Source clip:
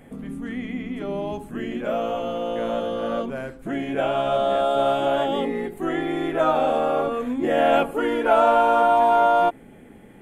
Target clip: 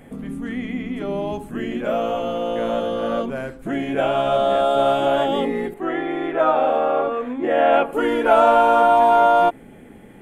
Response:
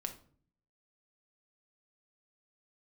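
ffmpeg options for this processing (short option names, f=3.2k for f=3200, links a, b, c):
-filter_complex "[0:a]asettb=1/sr,asplit=3[a][b][c];[a]atrim=end=5.744[d];[b]atrim=start=5.74:end=7.93,asetpts=PTS-STARTPTS,afade=t=in:d=0.004:c=qsin,afade=t=out:st=2.186:d=0.004:c=qsin,bass=f=250:g=-10,treble=f=4k:g=-15[e];[c]atrim=start=7.926[f];[d][e]acrossfade=d=0.004:c1=hsin:c2=qsin[g];[g][f]acrossfade=d=0.004:c1=qsin:c2=hsin,volume=3dB"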